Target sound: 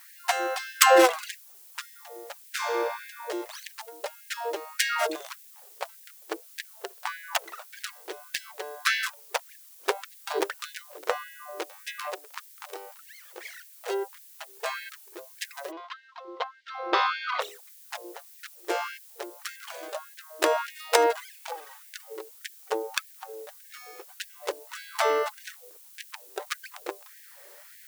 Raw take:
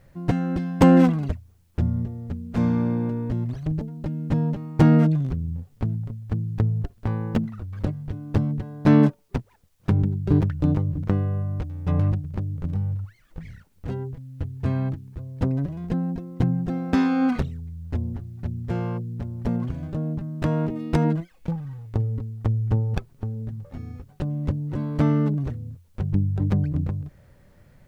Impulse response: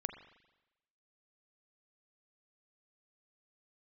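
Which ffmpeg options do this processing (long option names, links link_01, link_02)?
-filter_complex "[0:a]asplit=3[link_01][link_02][link_03];[link_01]afade=type=out:start_time=15.7:duration=0.02[link_04];[link_02]highpass=frequency=230:width=0.5412,highpass=frequency=230:width=1.3066,equalizer=frequency=270:width_type=q:width=4:gain=7,equalizer=frequency=430:width_type=q:width=4:gain=-8,equalizer=frequency=760:width_type=q:width=4:gain=-5,equalizer=frequency=1100:width_type=q:width=4:gain=7,equalizer=frequency=1700:width_type=q:width=4:gain=-7,equalizer=frequency=2500:width_type=q:width=4:gain=-6,lowpass=frequency=3700:width=0.5412,lowpass=frequency=3700:width=1.3066,afade=type=in:start_time=15.7:duration=0.02,afade=type=out:start_time=17.4:duration=0.02[link_05];[link_03]afade=type=in:start_time=17.4:duration=0.02[link_06];[link_04][link_05][link_06]amix=inputs=3:normalize=0,crystalizer=i=3.5:c=0,afftfilt=real='re*gte(b*sr/1024,320*pow(1600/320,0.5+0.5*sin(2*PI*1.7*pts/sr)))':imag='im*gte(b*sr/1024,320*pow(1600/320,0.5+0.5*sin(2*PI*1.7*pts/sr)))':win_size=1024:overlap=0.75,volume=7dB"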